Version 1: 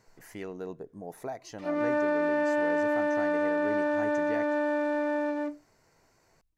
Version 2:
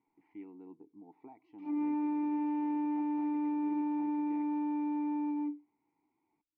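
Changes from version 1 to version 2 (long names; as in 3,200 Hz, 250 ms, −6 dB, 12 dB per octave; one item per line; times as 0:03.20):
speech: add high-frequency loss of the air 330 metres
master: add formant filter u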